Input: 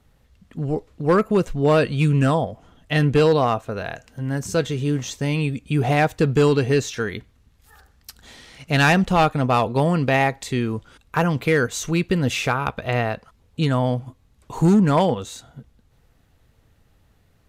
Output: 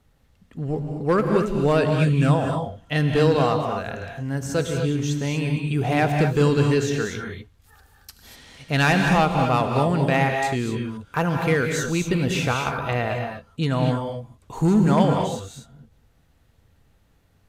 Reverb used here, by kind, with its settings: gated-style reverb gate 270 ms rising, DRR 3 dB; trim -3 dB

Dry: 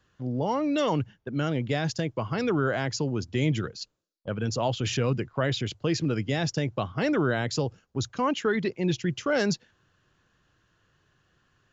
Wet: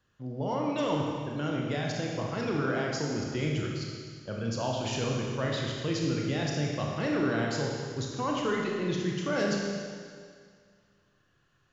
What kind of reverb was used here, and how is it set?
Schroeder reverb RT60 2 s, combs from 27 ms, DRR -1.5 dB; trim -6.5 dB

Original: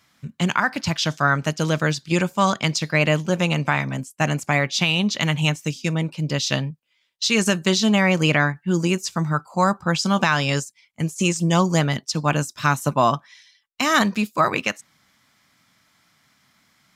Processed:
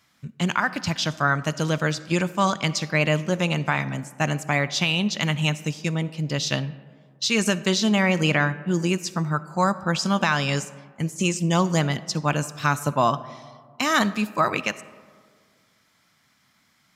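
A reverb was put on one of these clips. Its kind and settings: algorithmic reverb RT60 1.9 s, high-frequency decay 0.35×, pre-delay 20 ms, DRR 16.5 dB; trim -2.5 dB

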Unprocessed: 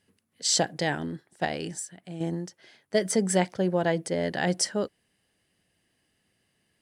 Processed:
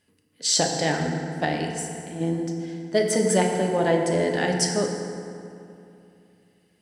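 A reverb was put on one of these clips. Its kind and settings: FDN reverb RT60 2.7 s, low-frequency decay 1.2×, high-frequency decay 0.55×, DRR 1 dB; trim +1.5 dB

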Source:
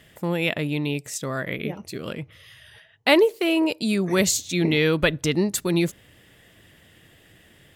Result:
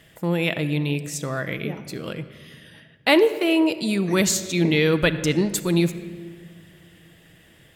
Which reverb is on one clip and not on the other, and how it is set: simulated room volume 3100 m³, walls mixed, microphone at 0.65 m

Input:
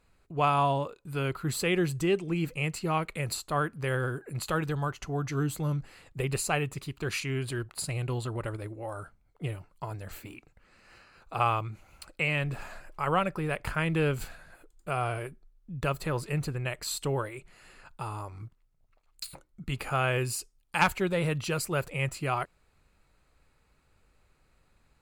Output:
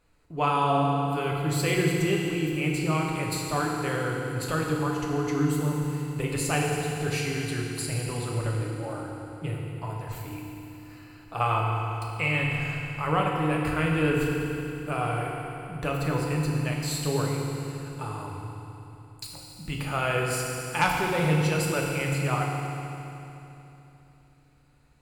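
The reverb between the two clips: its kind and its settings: FDN reverb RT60 3.1 s, low-frequency decay 1.25×, high-frequency decay 0.95×, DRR -2 dB; trim -1 dB

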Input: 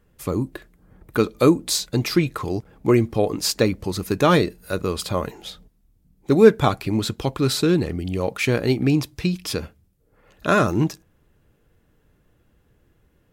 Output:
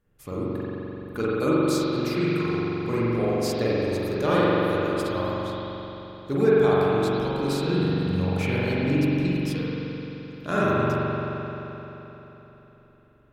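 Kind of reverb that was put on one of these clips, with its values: spring tank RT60 3.7 s, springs 43 ms, chirp 70 ms, DRR -9 dB; trim -12 dB

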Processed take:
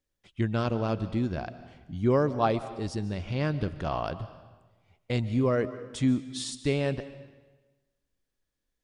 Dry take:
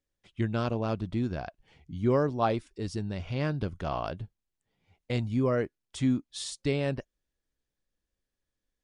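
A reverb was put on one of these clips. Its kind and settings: algorithmic reverb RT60 1.2 s, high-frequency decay 0.9×, pre-delay 100 ms, DRR 13.5 dB; trim +1.5 dB

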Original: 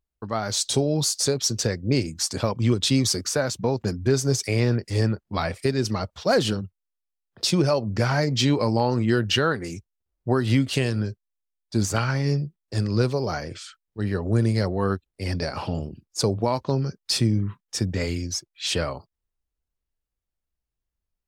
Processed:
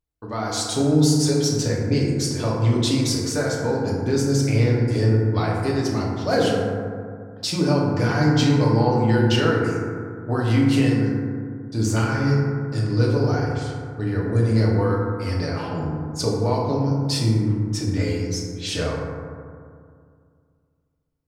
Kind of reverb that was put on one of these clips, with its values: FDN reverb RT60 2.2 s, low-frequency decay 1.2×, high-frequency decay 0.3×, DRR -4.5 dB; trim -4.5 dB

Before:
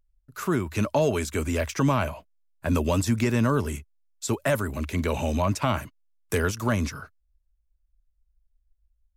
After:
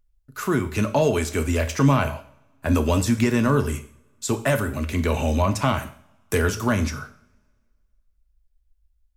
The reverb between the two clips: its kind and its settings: two-slope reverb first 0.48 s, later 1.8 s, from -26 dB, DRR 7 dB; trim +2.5 dB

